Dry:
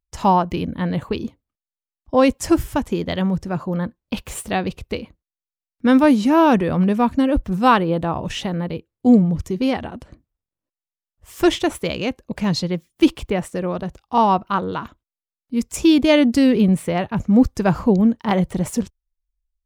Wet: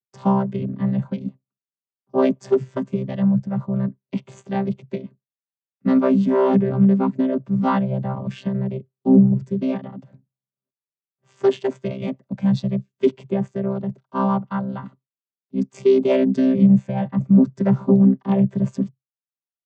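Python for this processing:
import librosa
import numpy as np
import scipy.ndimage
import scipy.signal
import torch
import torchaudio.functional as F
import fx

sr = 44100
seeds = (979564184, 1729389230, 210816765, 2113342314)

y = fx.chord_vocoder(x, sr, chord='bare fifth', root=48)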